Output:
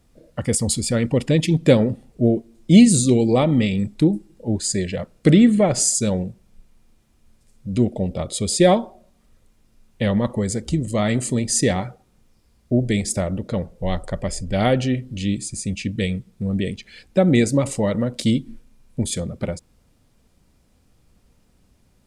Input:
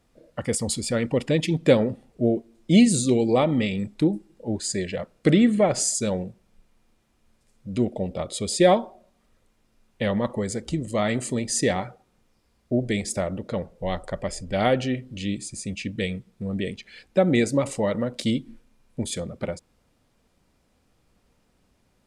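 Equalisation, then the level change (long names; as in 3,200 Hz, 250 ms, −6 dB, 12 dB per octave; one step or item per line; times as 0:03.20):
low-shelf EQ 250 Hz +9.5 dB
high-shelf EQ 4,200 Hz +7 dB
0.0 dB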